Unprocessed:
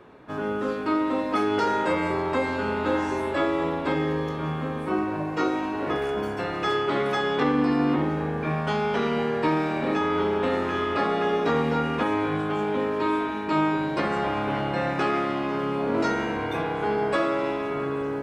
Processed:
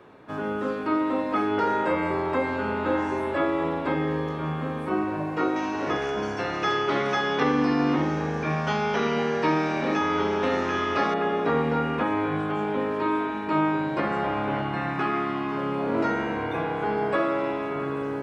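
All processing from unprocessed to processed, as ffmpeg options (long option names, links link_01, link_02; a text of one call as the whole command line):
ffmpeg -i in.wav -filter_complex "[0:a]asettb=1/sr,asplit=3[link_01][link_02][link_03];[link_01]atrim=end=5.564[link_04];[link_02]atrim=start=5.56:end=11.14,asetpts=PTS-STARTPTS,afade=type=in:duration=0.004:curve=qsin,afade=type=out:start_time=5.576:duration=0.004:curve=qsin,lowpass=frequency=5900:width_type=q:width=6.5,aemphasis=mode=production:type=75kf[link_05];[link_03]atrim=start=11.136[link_06];[link_04][link_05]acrossfade=duration=0.004:curve1=hsin:curve2=qsin[link_07];[link_07][link_06]acrossfade=duration=0.004:curve1=qsin:curve2=hsin,asettb=1/sr,asplit=3[link_08][link_09][link_10];[link_08]atrim=end=14.624[link_11];[link_09]atrim=start=14.62:end=15.57,asetpts=PTS-STARTPTS,afade=type=in:duration=0.004:curve=qsin,afade=type=out:start_time=0.946:duration=0.004:curve=qsin,equalizer=frequency=540:width_type=o:width=0.33:gain=-14.5,aeval=exprs='val(0)+0.01*sin(2*PI*1100*n/s)':channel_layout=same[link_12];[link_10]atrim=start=15.566[link_13];[link_11][link_12]acrossfade=duration=0.004:curve1=hsin:curve2=qsin[link_14];[link_14][link_13]acrossfade=duration=0.004:curve1=qsin:curve2=hsin,acrossover=split=2900[link_15][link_16];[link_16]acompressor=threshold=-53dB:ratio=4:attack=1:release=60[link_17];[link_15][link_17]amix=inputs=2:normalize=0,highpass=57,bandreject=frequency=60:width_type=h:width=6,bandreject=frequency=120:width_type=h:width=6,bandreject=frequency=180:width_type=h:width=6,bandreject=frequency=240:width_type=h:width=6,bandreject=frequency=300:width_type=h:width=6,bandreject=frequency=360:width_type=h:width=6,bandreject=frequency=420:width_type=h:width=6" out.wav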